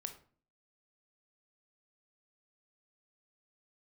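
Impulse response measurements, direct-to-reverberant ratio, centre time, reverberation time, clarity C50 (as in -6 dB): 6.5 dB, 10 ms, 0.45 s, 11.0 dB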